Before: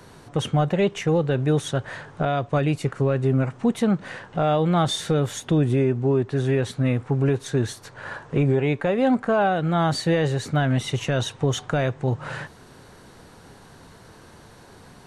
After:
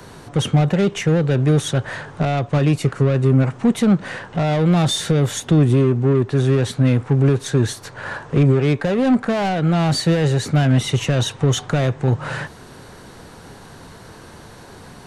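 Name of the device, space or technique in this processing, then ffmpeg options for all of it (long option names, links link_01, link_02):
one-band saturation: -filter_complex "[0:a]acrossover=split=290|4800[link_01][link_02][link_03];[link_02]asoftclip=type=tanh:threshold=-27dB[link_04];[link_01][link_04][link_03]amix=inputs=3:normalize=0,volume=7dB"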